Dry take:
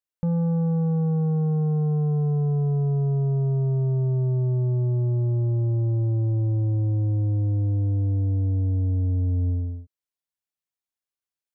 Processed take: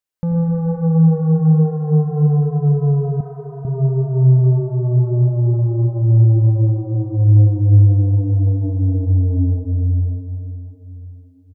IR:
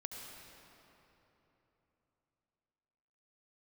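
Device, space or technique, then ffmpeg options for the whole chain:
cave: -filter_complex "[0:a]aecho=1:1:295:0.133[link_01];[1:a]atrim=start_sample=2205[link_02];[link_01][link_02]afir=irnorm=-1:irlink=0,asettb=1/sr,asplit=3[link_03][link_04][link_05];[link_03]atrim=end=3.204[link_06];[link_04]atrim=start=3.2:end=3.65,asetpts=PTS-STARTPTS,afade=type=in:duration=0.004:curve=qsin,afade=type=out:start_time=0.446:duration=0.004:curve=qsin,aecho=1:1:3.8:0.87,atrim=end_sample=19845[link_07];[link_05]atrim=start=3.646[link_08];[link_06][link_07]acrossfade=duration=0.004:curve1=hsin:curve2=qsin[link_09];[link_09][link_08]acrossfade=duration=0.004:curve1=qsin:curve2=hsin,volume=8.5dB"

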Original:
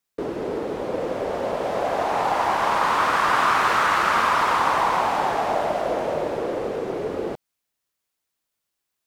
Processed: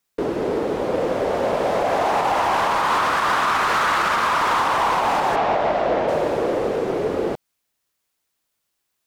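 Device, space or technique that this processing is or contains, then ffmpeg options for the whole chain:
limiter into clipper: -filter_complex "[0:a]alimiter=limit=-14dB:level=0:latency=1:release=93,asoftclip=type=hard:threshold=-19.5dB,asplit=3[link_01][link_02][link_03];[link_01]afade=type=out:start_time=5.35:duration=0.02[link_04];[link_02]lowpass=4200,afade=type=in:start_time=5.35:duration=0.02,afade=type=out:start_time=6.07:duration=0.02[link_05];[link_03]afade=type=in:start_time=6.07:duration=0.02[link_06];[link_04][link_05][link_06]amix=inputs=3:normalize=0,volume=5dB"

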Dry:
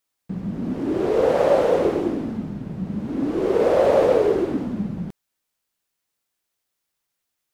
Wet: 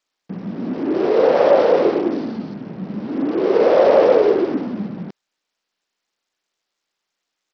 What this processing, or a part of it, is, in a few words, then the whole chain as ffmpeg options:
Bluetooth headset: -filter_complex "[0:a]asettb=1/sr,asplit=3[link_01][link_02][link_03];[link_01]atrim=end=2.124[link_04];[link_02]atrim=start=2.12:end=2.54,asetpts=PTS-STARTPTS,afade=type=in:duration=0.004:curve=qsin,afade=type=out:start_time=0.416:duration=0.004:curve=qsin,equalizer=frequency=4500:width=3.6:gain=9[link_05];[link_03]atrim=start=2.536[link_06];[link_04][link_05]acrossfade=duration=0.004:curve1=hsin:curve2=qsin[link_07];[link_07][link_06]acrossfade=duration=0.004:curve1=qsin:curve2=hsin,highpass=230,aresample=16000,aresample=44100,volume=4.5dB" -ar 44100 -c:a sbc -b:a 64k

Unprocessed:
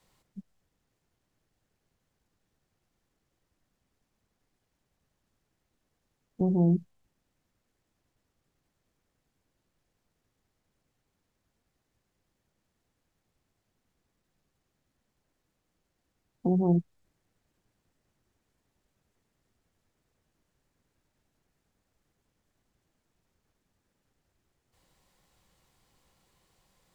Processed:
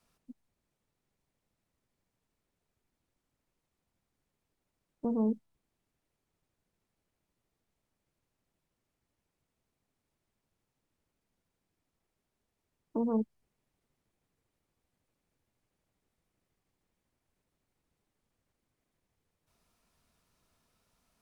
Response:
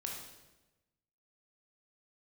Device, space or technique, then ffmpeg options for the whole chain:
nightcore: -af "asetrate=56007,aresample=44100,volume=-5.5dB"

